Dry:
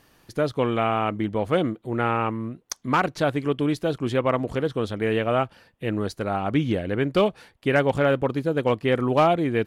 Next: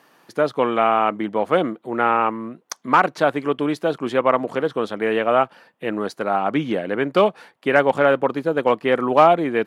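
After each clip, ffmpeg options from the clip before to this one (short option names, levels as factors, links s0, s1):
-af "highpass=f=160:w=0.5412,highpass=f=160:w=1.3066,equalizer=f=1000:w=0.54:g=8.5,volume=0.891"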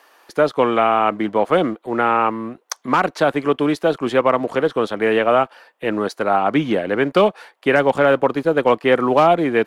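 -filter_complex "[0:a]acrossover=split=360|3300[s0][s1][s2];[s0]aeval=exprs='sgn(val(0))*max(abs(val(0))-0.00501,0)':c=same[s3];[s1]alimiter=limit=0.316:level=0:latency=1:release=131[s4];[s3][s4][s2]amix=inputs=3:normalize=0,volume=1.58"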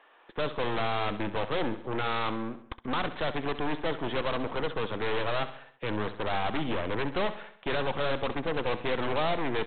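-af "aeval=exprs='0.75*(cos(1*acos(clip(val(0)/0.75,-1,1)))-cos(1*PI/2))+0.15*(cos(8*acos(clip(val(0)/0.75,-1,1)))-cos(8*PI/2))':c=same,aresample=8000,asoftclip=type=tanh:threshold=0.141,aresample=44100,aecho=1:1:66|132|198|264|330:0.224|0.116|0.0605|0.0315|0.0164,volume=0.473"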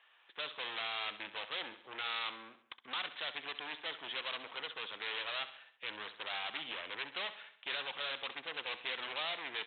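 -af "bandpass=f=3300:t=q:w=1.3:csg=0"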